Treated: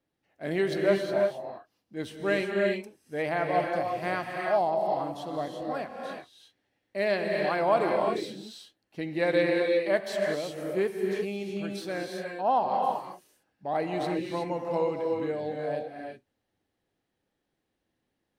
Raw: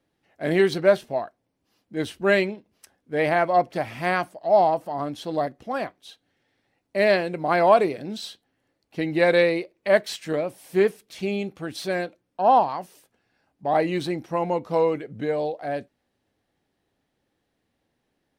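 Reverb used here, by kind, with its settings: gated-style reverb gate 390 ms rising, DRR 1 dB; trim -8 dB

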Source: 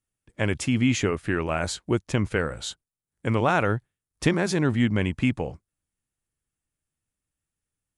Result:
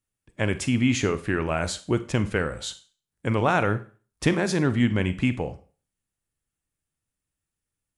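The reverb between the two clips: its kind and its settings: Schroeder reverb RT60 0.38 s, combs from 33 ms, DRR 12 dB

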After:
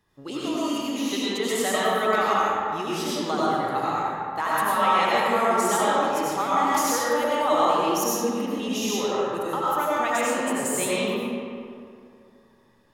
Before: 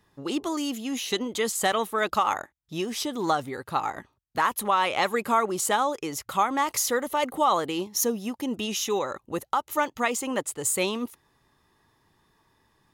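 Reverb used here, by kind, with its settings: algorithmic reverb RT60 2.4 s, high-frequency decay 0.55×, pre-delay 55 ms, DRR -8 dB; trim -5.5 dB

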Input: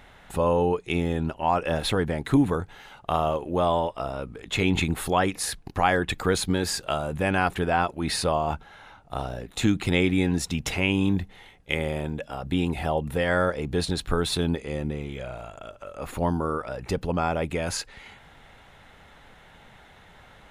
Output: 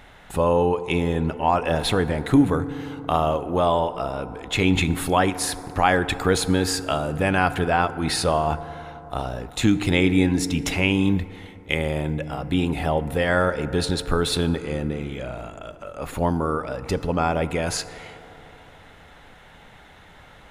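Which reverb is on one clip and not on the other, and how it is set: FDN reverb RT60 3.6 s, high-frequency decay 0.3×, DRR 13 dB; trim +3 dB

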